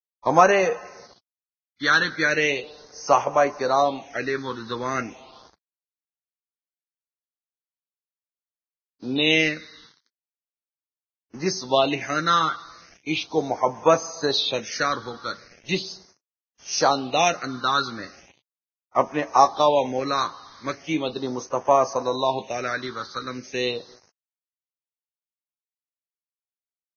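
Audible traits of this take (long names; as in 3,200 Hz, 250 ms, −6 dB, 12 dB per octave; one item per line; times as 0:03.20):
a quantiser's noise floor 8 bits, dither none
phaser sweep stages 6, 0.38 Hz, lowest notch 660–3,900 Hz
Ogg Vorbis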